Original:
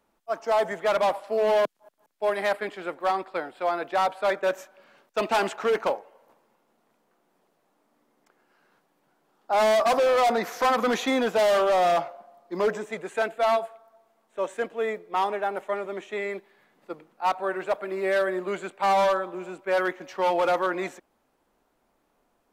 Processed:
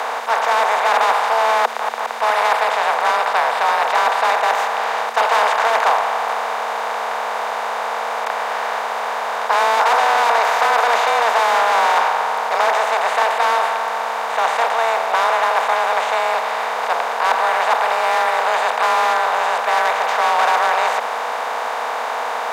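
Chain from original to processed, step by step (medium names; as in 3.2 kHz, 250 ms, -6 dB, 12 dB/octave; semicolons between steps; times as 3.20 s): spectral levelling over time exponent 0.2; frequency shift +230 Hz; trim -1.5 dB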